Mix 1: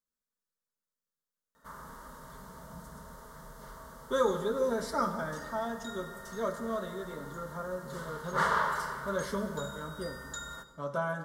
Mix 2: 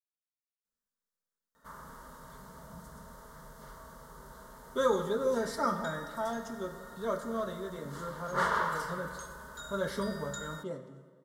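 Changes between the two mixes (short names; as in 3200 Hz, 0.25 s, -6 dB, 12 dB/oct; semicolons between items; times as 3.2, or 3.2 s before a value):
speech: entry +0.65 s; background: send off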